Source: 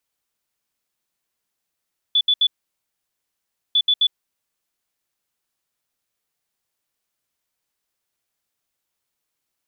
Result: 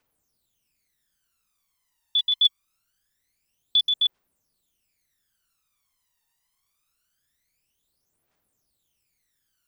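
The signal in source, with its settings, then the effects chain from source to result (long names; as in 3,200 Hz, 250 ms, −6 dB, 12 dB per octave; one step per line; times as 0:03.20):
beeps in groups sine 3,460 Hz, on 0.06 s, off 0.07 s, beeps 3, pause 1.28 s, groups 2, −13 dBFS
phase shifter 0.24 Hz, delay 1.1 ms, feedback 79%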